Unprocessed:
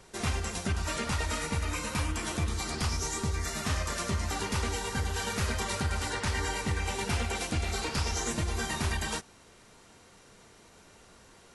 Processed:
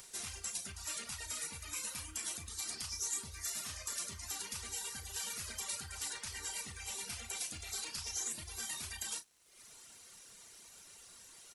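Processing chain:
reverb reduction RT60 0.95 s
brickwall limiter −26.5 dBFS, peak gain reduction 6.5 dB
first-order pre-emphasis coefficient 0.9
upward compression, threshold −50 dBFS
surface crackle 240 per second −60 dBFS
double-tracking delay 35 ms −11 dB
level +2 dB

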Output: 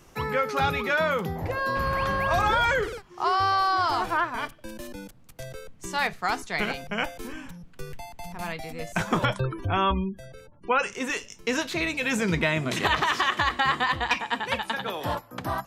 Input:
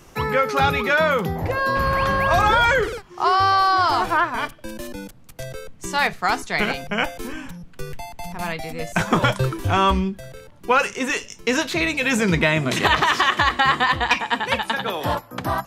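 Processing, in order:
0:09.25–0:10.92: gate on every frequency bin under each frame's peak −30 dB strong
level −6 dB

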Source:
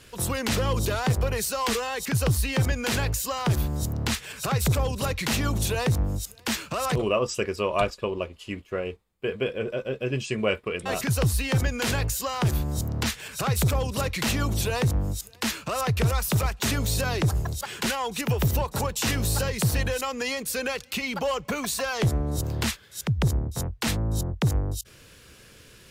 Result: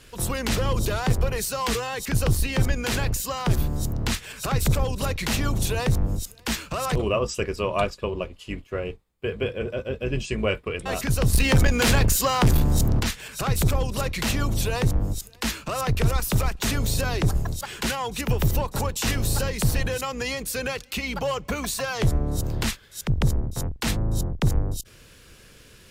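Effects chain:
sub-octave generator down 2 octaves, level −1 dB
0:11.33–0:13.00: leveller curve on the samples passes 2

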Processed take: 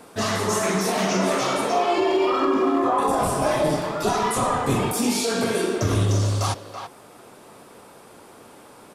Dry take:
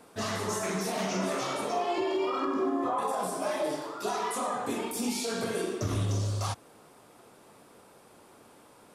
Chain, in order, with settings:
0:03.07–0:04.93: sub-octave generator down 1 octave, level +2 dB
far-end echo of a speakerphone 330 ms, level −7 dB
level +8.5 dB

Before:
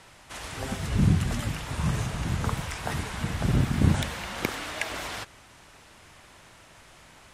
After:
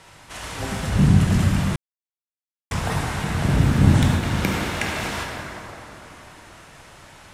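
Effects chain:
0:03.48–0:04.23: noise gate with hold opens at −23 dBFS
dense smooth reverb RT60 3.6 s, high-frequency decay 0.5×, pre-delay 0 ms, DRR −2 dB
0:01.76–0:02.71: silence
level +2.5 dB

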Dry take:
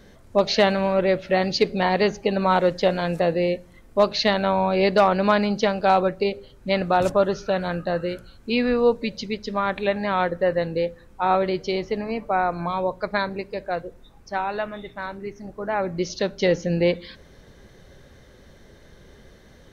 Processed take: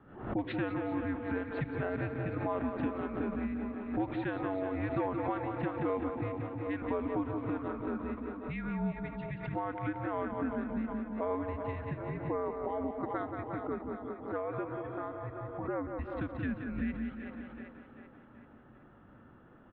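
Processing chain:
repeating echo 178 ms, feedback 43%, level −8.5 dB
single-sideband voice off tune −290 Hz 320–3,500 Hz
low-shelf EQ 200 Hz −7 dB
on a send: echo with a time of its own for lows and highs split 300 Hz, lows 166 ms, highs 384 ms, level −10.5 dB
on the sum: downward compressor 2.5 to 1, threshold −37 dBFS, peak gain reduction 15 dB
low-pass that shuts in the quiet parts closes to 1,000 Hz, open at −15 dBFS
background raised ahead of every attack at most 89 dB per second

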